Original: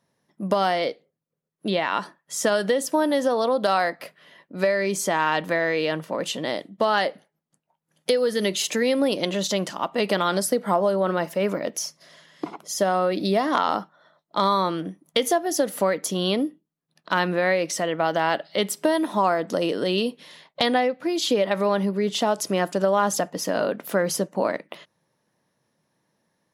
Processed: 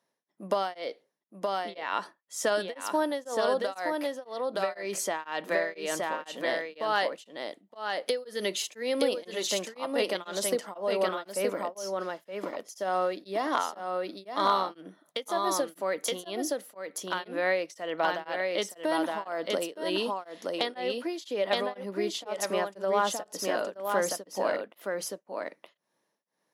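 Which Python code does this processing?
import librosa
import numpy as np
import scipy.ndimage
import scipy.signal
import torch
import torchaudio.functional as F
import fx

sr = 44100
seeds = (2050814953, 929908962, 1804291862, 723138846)

p1 = scipy.signal.sosfilt(scipy.signal.butter(2, 310.0, 'highpass', fs=sr, output='sos'), x)
p2 = p1 + fx.echo_single(p1, sr, ms=920, db=-3.5, dry=0)
p3 = p2 * np.abs(np.cos(np.pi * 2.0 * np.arange(len(p2)) / sr))
y = p3 * librosa.db_to_amplitude(-4.5)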